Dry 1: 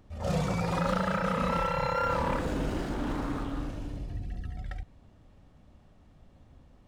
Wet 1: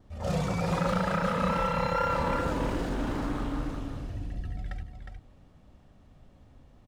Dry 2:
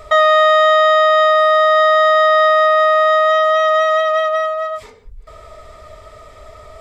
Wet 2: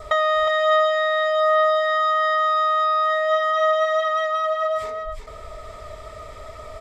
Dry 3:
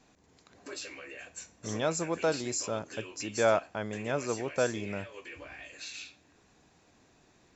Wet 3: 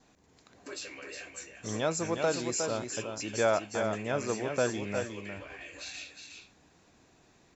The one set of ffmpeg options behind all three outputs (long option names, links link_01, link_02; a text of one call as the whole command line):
ffmpeg -i in.wav -filter_complex "[0:a]adynamicequalizer=threshold=0.00631:dfrequency=2500:dqfactor=7.2:tfrequency=2500:tqfactor=7.2:attack=5:release=100:ratio=0.375:range=3.5:mode=cutabove:tftype=bell,acompressor=threshold=-21dB:ratio=2.5,asplit=2[link_01][link_02];[link_02]aecho=0:1:361:0.501[link_03];[link_01][link_03]amix=inputs=2:normalize=0" out.wav